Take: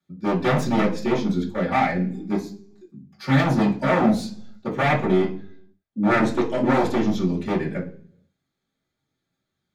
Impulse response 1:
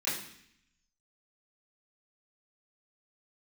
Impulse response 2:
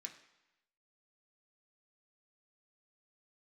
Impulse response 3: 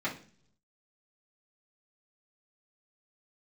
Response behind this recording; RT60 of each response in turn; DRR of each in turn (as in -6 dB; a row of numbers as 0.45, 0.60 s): 3; 0.65, 0.95, 0.45 s; -14.0, 1.5, -9.0 dB